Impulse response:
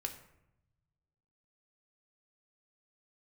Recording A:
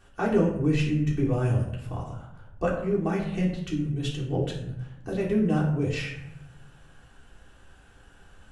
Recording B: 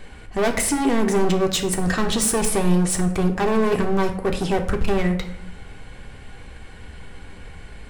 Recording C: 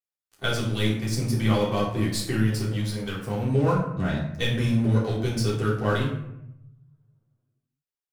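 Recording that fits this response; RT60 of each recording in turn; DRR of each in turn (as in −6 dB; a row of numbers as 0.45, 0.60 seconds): B; 0.80, 0.85, 0.80 seconds; −5.5, 3.5, −13.5 decibels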